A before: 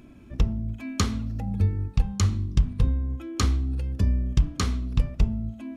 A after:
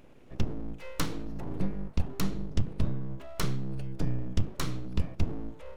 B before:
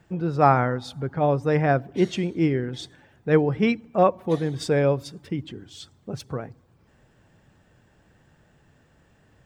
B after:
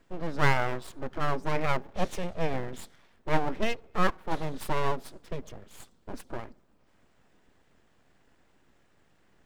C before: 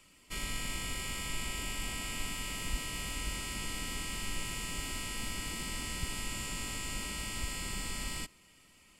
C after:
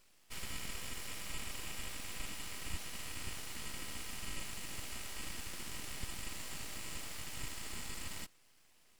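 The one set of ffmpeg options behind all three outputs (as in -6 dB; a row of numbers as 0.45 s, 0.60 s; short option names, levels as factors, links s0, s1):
-af "aeval=exprs='abs(val(0))':c=same,volume=0.631"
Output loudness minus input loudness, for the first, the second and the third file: -8.5 LU, -8.5 LU, -6.5 LU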